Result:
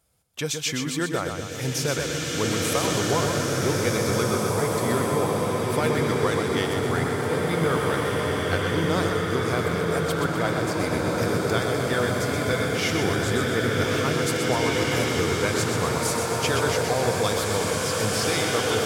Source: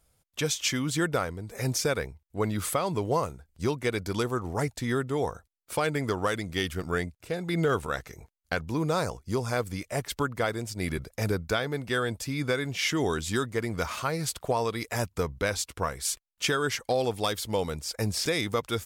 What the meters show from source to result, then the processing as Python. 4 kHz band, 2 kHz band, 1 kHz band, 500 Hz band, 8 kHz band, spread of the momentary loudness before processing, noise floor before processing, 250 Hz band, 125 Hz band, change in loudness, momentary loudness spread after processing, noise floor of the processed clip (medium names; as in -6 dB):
+5.5 dB, +6.0 dB, +5.5 dB, +6.0 dB, +5.5 dB, 6 LU, -74 dBFS, +5.5 dB, +6.0 dB, +5.5 dB, 3 LU, -30 dBFS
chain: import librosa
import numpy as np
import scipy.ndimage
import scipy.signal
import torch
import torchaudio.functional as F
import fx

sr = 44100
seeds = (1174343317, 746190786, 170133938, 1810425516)

y = scipy.signal.sosfilt(scipy.signal.butter(2, 67.0, 'highpass', fs=sr, output='sos'), x)
y = fx.echo_feedback(y, sr, ms=125, feedback_pct=55, wet_db=-6.0)
y = fx.rev_bloom(y, sr, seeds[0], attack_ms=2250, drr_db=-3.0)